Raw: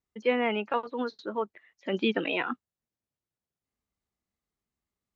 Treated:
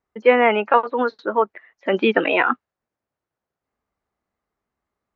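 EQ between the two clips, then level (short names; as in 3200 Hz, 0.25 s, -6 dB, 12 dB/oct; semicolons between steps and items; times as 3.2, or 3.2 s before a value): EQ curve 180 Hz 0 dB, 630 Hz +9 dB, 1500 Hz +8 dB, 3300 Hz -3 dB; dynamic EQ 2500 Hz, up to +5 dB, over -44 dBFS, Q 0.81; air absorption 62 m; +4.5 dB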